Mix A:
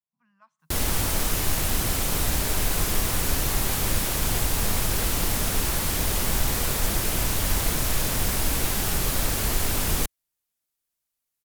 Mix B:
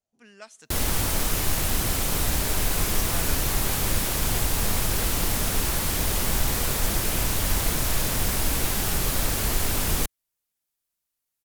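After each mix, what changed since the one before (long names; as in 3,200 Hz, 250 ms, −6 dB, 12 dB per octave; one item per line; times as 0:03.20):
speech: remove pair of resonant band-passes 410 Hz, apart 2.7 octaves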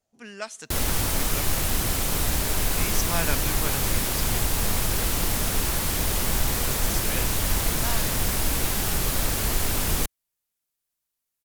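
speech +10.0 dB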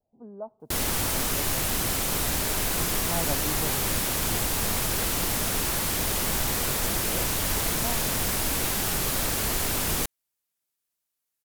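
speech: add Butterworth low-pass 960 Hz 48 dB per octave
background: add low-shelf EQ 91 Hz −9 dB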